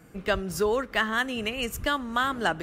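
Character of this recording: noise floor -51 dBFS; spectral tilt -3.5 dB/oct

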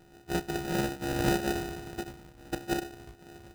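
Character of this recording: a buzz of ramps at a fixed pitch in blocks of 128 samples; phasing stages 4, 0.72 Hz, lowest notch 670–2500 Hz; aliases and images of a low sample rate 1100 Hz, jitter 0%; noise-modulated level

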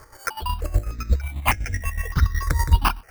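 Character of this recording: a quantiser's noise floor 8-bit, dither triangular; chopped level 8.1 Hz, depth 60%, duty 35%; aliases and images of a low sample rate 3800 Hz, jitter 0%; notches that jump at a steady rate 3.3 Hz 760–4000 Hz

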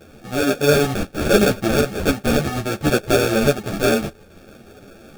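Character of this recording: aliases and images of a low sample rate 1000 Hz, jitter 0%; a shimmering, thickened sound

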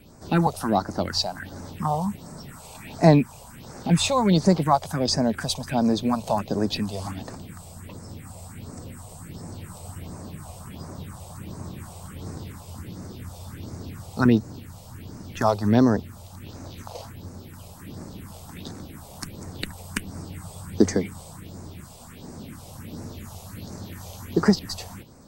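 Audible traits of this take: phasing stages 4, 1.4 Hz, lowest notch 270–3100 Hz

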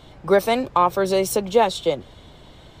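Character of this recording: noise floor -47 dBFS; spectral tilt -4.0 dB/oct

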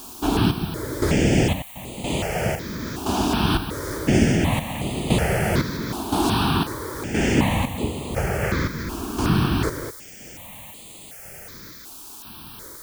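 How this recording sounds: chopped level 0.98 Hz, depth 65%, duty 50%; a quantiser's noise floor 8-bit, dither triangular; notches that jump at a steady rate 2.7 Hz 530–5500 Hz

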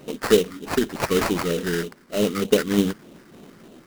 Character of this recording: phasing stages 6, 3.3 Hz, lowest notch 670–1700 Hz; aliases and images of a low sample rate 3400 Hz, jitter 20%; tremolo saw down 1.8 Hz, depth 30%

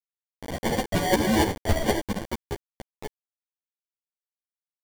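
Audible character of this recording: aliases and images of a low sample rate 1300 Hz, jitter 0%; tremolo saw up 3.5 Hz, depth 75%; a quantiser's noise floor 6-bit, dither none; a shimmering, thickened sound

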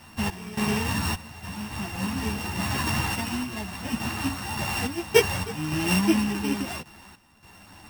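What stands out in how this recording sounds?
a buzz of ramps at a fixed pitch in blocks of 16 samples; random-step tremolo 3.5 Hz, depth 85%; a shimmering, thickened sound

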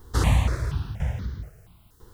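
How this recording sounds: tremolo saw down 1 Hz, depth 80%; a quantiser's noise floor 12-bit, dither triangular; notches that jump at a steady rate 4.2 Hz 650–2600 Hz

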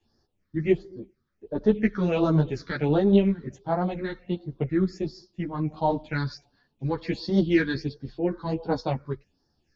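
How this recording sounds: phasing stages 6, 1.4 Hz, lowest notch 680–2600 Hz; tremolo triangle 0.71 Hz, depth 30%; a shimmering, thickened sound

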